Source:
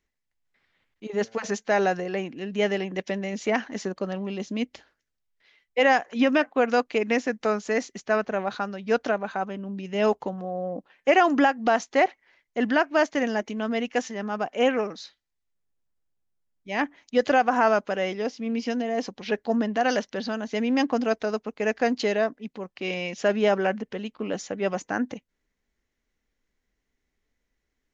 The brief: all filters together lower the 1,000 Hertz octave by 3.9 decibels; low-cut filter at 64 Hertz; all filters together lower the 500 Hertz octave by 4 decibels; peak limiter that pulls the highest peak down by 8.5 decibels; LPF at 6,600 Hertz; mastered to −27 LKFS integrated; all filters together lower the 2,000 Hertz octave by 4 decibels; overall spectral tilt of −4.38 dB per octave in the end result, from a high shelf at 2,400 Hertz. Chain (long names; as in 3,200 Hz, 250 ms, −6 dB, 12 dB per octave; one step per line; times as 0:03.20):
high-pass filter 64 Hz
low-pass filter 6,600 Hz
parametric band 500 Hz −4 dB
parametric band 1,000 Hz −3.5 dB
parametric band 2,000 Hz −7 dB
high-shelf EQ 2,400 Hz +7 dB
level +4.5 dB
brickwall limiter −15 dBFS